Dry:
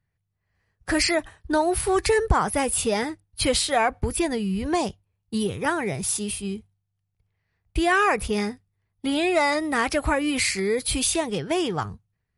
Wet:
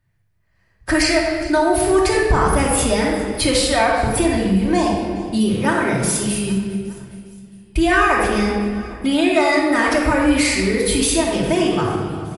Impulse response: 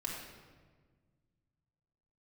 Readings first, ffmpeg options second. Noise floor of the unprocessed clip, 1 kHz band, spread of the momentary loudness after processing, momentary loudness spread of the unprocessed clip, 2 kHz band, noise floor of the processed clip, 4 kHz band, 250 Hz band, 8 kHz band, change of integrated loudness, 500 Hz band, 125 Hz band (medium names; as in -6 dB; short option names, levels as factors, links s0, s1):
-78 dBFS, +5.5 dB, 7 LU, 10 LU, +6.5 dB, -61 dBFS, +5.0 dB, +9.0 dB, +4.5 dB, +6.5 dB, +6.5 dB, +9.0 dB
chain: -filter_complex "[0:a]aecho=1:1:408|816|1224:0.0841|0.0404|0.0194[s0];[1:a]atrim=start_sample=2205[s1];[s0][s1]afir=irnorm=-1:irlink=0,acompressor=threshold=0.0316:ratio=1.5,volume=2.82"